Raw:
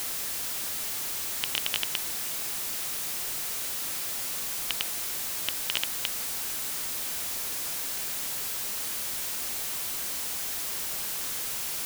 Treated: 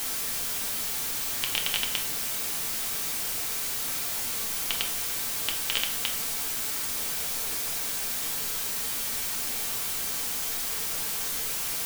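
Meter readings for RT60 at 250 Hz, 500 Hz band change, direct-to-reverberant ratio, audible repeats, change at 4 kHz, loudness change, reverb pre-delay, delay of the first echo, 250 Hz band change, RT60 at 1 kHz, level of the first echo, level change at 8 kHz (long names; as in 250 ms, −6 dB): 1.0 s, +3.0 dB, 1.0 dB, no echo audible, +2.0 dB, +2.0 dB, 4 ms, no echo audible, +3.5 dB, 0.50 s, no echo audible, +2.0 dB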